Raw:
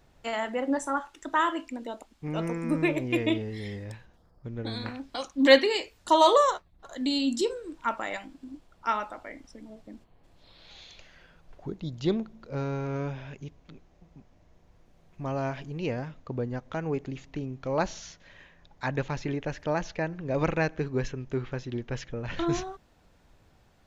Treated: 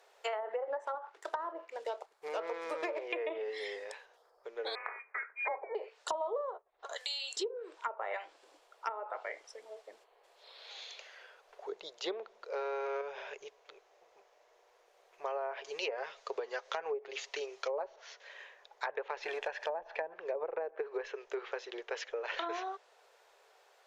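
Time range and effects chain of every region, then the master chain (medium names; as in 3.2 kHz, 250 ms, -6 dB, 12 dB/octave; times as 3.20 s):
0.85–3.06 s: median filter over 15 samples + treble shelf 5.9 kHz +8.5 dB
4.75–5.75 s: Bessel high-pass 840 Hz + frequency inversion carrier 2.7 kHz
6.96–7.37 s: high-pass 980 Hz + treble shelf 5.6 kHz +10.5 dB + compression 2.5:1, threshold -36 dBFS
13.01–13.45 s: bass shelf 200 Hz +8.5 dB + compression 5:1, threshold -30 dBFS
15.64–17.96 s: peaking EQ 5.9 kHz +11.5 dB 2.4 oct + comb 7.3 ms, depth 45%
19.23–20.14 s: companding laws mixed up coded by mu + comb 1.2 ms, depth 42%
whole clip: elliptic high-pass 420 Hz, stop band 40 dB; low-pass that closes with the level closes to 630 Hz, closed at -26 dBFS; compression 8:1, threshold -36 dBFS; trim +3 dB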